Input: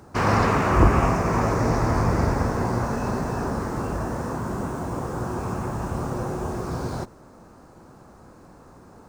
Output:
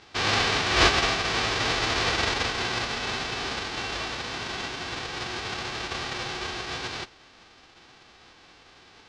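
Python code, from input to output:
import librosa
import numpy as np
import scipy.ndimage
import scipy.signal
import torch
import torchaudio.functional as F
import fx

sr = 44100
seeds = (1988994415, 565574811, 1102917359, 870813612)

y = fx.envelope_flatten(x, sr, power=0.1)
y = scipy.signal.sosfilt(scipy.signal.butter(4, 4700.0, 'lowpass', fs=sr, output='sos'), y)
y = y + 0.31 * np.pad(y, (int(2.6 * sr / 1000.0), 0))[:len(y)]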